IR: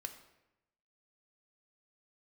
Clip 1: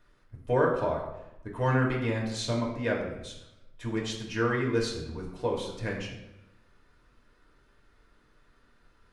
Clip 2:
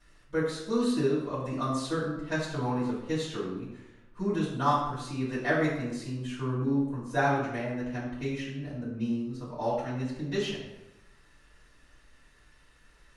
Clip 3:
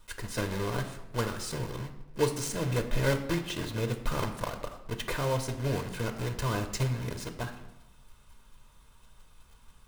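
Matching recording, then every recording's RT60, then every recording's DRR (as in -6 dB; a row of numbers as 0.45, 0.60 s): 3; 0.90, 0.90, 0.90 s; -2.5, -11.5, 5.5 dB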